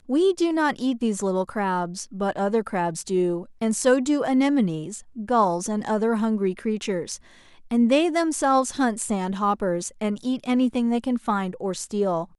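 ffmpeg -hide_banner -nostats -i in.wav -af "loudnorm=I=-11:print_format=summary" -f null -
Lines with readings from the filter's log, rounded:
Input Integrated:    -24.0 LUFS
Input True Peak:      -7.4 dBTP
Input LRA:             1.9 LU
Input Threshold:     -34.2 LUFS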